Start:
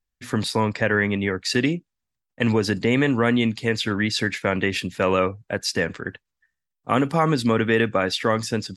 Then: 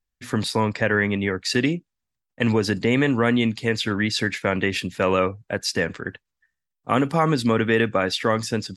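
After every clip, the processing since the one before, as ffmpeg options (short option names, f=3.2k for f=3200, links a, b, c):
-af anull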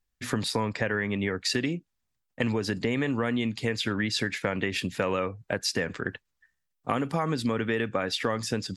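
-af "acompressor=threshold=-28dB:ratio=4,volume=2.5dB"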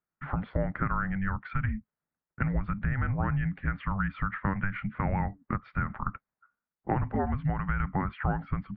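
-af "highpass=f=170:t=q:w=0.5412,highpass=f=170:t=q:w=1.307,lowpass=f=2.3k:t=q:w=0.5176,lowpass=f=2.3k:t=q:w=0.7071,lowpass=f=2.3k:t=q:w=1.932,afreqshift=-390"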